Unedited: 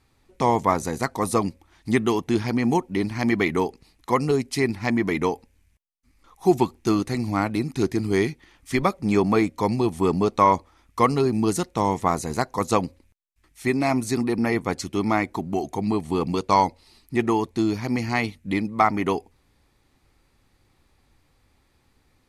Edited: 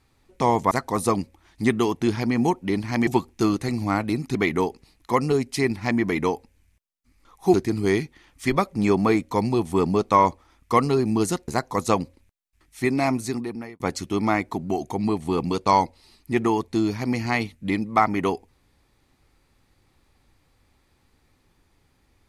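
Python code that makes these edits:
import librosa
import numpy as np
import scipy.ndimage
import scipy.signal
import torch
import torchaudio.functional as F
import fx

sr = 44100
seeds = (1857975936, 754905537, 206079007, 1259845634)

y = fx.edit(x, sr, fx.cut(start_s=0.71, length_s=0.27),
    fx.move(start_s=6.53, length_s=1.28, to_s=3.34),
    fx.cut(start_s=11.75, length_s=0.56),
    fx.fade_out_span(start_s=13.89, length_s=0.74), tone=tone)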